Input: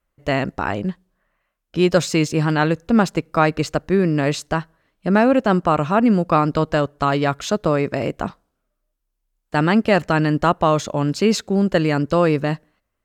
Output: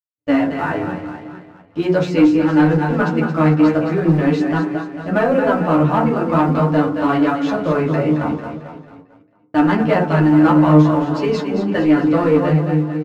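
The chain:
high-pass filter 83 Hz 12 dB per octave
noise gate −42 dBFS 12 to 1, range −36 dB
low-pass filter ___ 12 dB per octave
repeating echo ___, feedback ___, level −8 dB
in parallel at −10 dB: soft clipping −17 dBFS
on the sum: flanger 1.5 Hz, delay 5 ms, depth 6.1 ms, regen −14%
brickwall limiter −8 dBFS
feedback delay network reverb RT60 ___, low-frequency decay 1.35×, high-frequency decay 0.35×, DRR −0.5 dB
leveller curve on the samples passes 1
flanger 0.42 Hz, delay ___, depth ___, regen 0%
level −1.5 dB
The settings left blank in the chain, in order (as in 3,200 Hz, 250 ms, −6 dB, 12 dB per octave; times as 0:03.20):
3,200 Hz, 223 ms, 52%, 0.38 s, 9.6 ms, 3.8 ms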